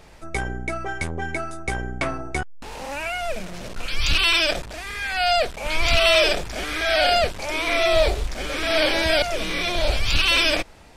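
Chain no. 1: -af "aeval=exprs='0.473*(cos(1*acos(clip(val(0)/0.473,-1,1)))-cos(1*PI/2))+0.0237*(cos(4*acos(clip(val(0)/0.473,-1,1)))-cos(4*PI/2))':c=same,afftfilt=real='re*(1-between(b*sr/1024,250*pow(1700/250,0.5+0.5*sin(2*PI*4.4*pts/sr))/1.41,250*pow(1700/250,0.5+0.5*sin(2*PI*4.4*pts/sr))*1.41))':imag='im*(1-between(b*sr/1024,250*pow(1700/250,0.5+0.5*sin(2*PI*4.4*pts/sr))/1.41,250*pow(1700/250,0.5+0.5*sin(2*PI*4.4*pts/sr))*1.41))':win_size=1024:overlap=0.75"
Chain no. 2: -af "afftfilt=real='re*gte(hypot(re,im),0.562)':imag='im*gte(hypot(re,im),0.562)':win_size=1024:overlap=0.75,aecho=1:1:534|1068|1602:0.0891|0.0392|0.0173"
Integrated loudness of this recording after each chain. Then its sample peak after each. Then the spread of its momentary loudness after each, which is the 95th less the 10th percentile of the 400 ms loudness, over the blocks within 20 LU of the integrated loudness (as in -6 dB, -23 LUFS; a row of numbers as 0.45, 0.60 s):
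-22.0, -25.5 LUFS; -6.5, -8.5 dBFS; 14, 23 LU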